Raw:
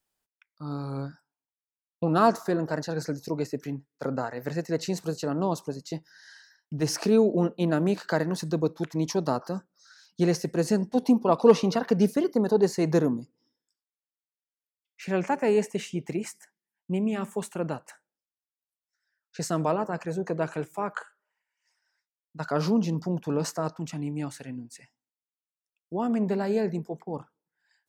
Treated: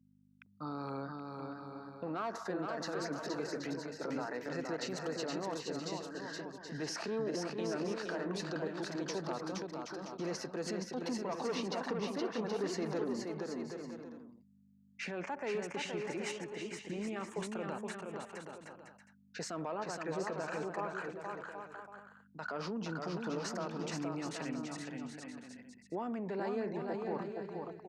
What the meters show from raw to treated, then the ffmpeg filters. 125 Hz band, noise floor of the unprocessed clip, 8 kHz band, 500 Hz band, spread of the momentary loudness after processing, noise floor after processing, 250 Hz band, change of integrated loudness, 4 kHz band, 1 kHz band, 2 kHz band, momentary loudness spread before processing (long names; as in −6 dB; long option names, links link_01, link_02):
−14.5 dB, below −85 dBFS, −7.5 dB, −11.5 dB, 10 LU, −66 dBFS, −12.5 dB, −12.5 dB, −4.5 dB, −9.5 dB, −4.5 dB, 14 LU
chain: -filter_complex "[0:a]asoftclip=type=tanh:threshold=-14dB,equalizer=frequency=1500:width_type=o:width=2.3:gain=5,acompressor=threshold=-25dB:ratio=6,alimiter=level_in=4dB:limit=-24dB:level=0:latency=1:release=68,volume=-4dB,anlmdn=0.00631,aeval=exprs='val(0)+0.00251*(sin(2*PI*50*n/s)+sin(2*PI*2*50*n/s)/2+sin(2*PI*3*50*n/s)/3+sin(2*PI*4*50*n/s)/4+sin(2*PI*5*50*n/s)/5)':channel_layout=same,highpass=230,lowpass=6300,asplit=2[link_01][link_02];[link_02]aecho=0:1:470|775.5|974.1|1103|1187:0.631|0.398|0.251|0.158|0.1[link_03];[link_01][link_03]amix=inputs=2:normalize=0,volume=-1.5dB" -ar 48000 -c:a libopus -b:a 128k